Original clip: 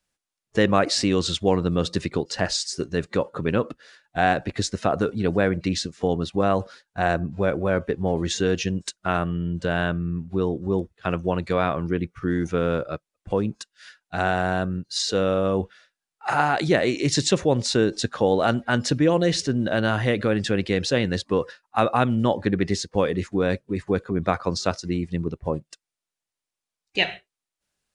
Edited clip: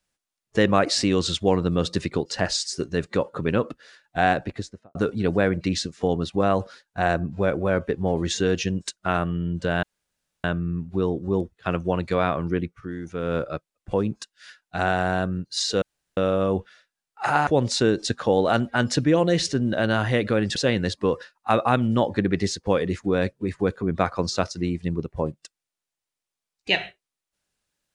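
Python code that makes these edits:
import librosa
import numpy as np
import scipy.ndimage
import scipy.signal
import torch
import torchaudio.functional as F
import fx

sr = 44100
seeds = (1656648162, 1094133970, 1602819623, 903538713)

y = fx.studio_fade_out(x, sr, start_s=4.29, length_s=0.66)
y = fx.edit(y, sr, fx.insert_room_tone(at_s=9.83, length_s=0.61),
    fx.fade_down_up(start_s=11.99, length_s=0.78, db=-9.5, fade_s=0.36, curve='qua'),
    fx.insert_room_tone(at_s=15.21, length_s=0.35),
    fx.cut(start_s=16.51, length_s=0.9),
    fx.cut(start_s=20.5, length_s=0.34), tone=tone)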